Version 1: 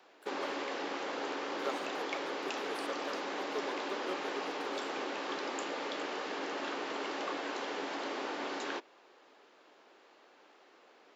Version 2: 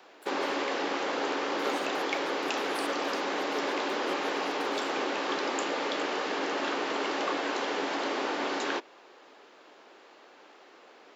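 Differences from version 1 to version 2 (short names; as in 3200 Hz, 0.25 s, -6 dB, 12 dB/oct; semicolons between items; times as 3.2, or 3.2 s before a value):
speech: add high shelf 3800 Hz +11 dB; background +7.0 dB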